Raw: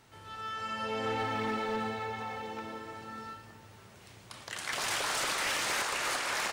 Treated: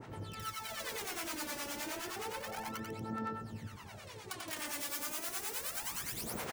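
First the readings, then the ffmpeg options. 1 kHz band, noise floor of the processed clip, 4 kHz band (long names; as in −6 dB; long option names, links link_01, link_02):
−8.5 dB, −50 dBFS, −7.5 dB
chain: -filter_complex "[0:a]aeval=exprs='(mod(44.7*val(0)+1,2)-1)/44.7':channel_layout=same,lowshelf=frequency=490:gain=8,aphaser=in_gain=1:out_gain=1:delay=3.5:decay=0.77:speed=0.31:type=sinusoidal,acompressor=threshold=-36dB:ratio=6,highpass=frequency=170:poles=1,aecho=1:1:90:0.668,acrossover=split=630[link_01][link_02];[link_01]aeval=exprs='val(0)*(1-0.7/2+0.7/2*cos(2*PI*9.6*n/s))':channel_layout=same[link_03];[link_02]aeval=exprs='val(0)*(1-0.7/2-0.7/2*cos(2*PI*9.6*n/s))':channel_layout=same[link_04];[link_03][link_04]amix=inputs=2:normalize=0,adynamicequalizer=threshold=0.00141:dfrequency=3700:dqfactor=1.4:tfrequency=3700:tqfactor=1.4:attack=5:release=100:ratio=0.375:range=2:mode=cutabove:tftype=bell,volume=1.5dB"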